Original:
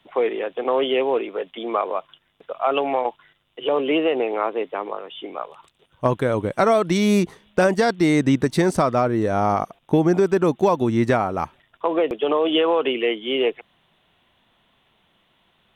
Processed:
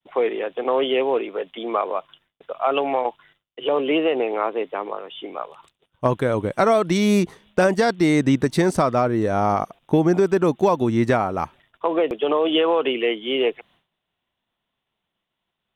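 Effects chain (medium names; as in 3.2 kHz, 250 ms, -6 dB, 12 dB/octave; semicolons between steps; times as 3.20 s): expander -51 dBFS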